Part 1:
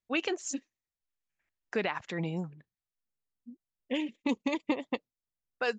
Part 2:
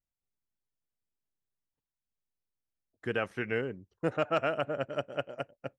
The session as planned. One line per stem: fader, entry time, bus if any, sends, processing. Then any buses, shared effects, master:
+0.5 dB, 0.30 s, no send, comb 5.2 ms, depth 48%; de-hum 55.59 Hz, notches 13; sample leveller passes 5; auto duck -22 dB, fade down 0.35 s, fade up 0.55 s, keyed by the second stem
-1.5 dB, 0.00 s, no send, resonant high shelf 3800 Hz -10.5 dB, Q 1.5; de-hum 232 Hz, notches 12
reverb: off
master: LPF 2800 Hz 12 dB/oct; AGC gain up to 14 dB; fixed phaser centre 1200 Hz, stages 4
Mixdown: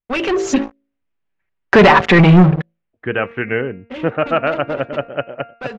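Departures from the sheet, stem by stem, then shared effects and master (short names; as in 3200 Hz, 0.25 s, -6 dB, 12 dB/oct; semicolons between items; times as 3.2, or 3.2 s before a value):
stem 1: entry 0.30 s -> 0.00 s; master: missing fixed phaser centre 1200 Hz, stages 4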